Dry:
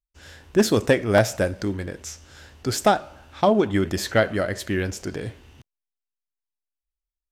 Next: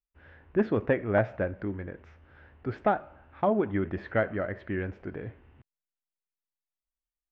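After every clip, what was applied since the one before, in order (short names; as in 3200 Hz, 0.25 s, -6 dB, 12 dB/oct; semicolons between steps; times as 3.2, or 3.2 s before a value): LPF 2200 Hz 24 dB/oct; gain -7 dB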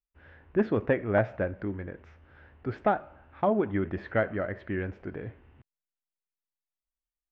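nothing audible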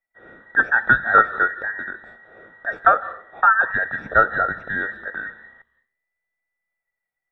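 band inversion scrambler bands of 2000 Hz; reverb RT60 0.45 s, pre-delay 0.151 s, DRR 19.5 dB; gain -1 dB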